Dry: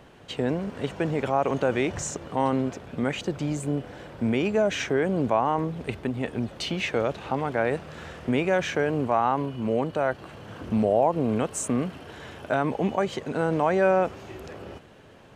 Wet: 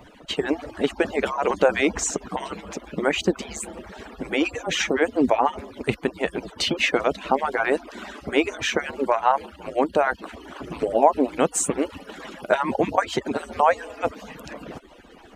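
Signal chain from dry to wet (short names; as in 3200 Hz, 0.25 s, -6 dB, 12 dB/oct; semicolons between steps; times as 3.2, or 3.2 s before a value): median-filter separation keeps percussive; gain +8 dB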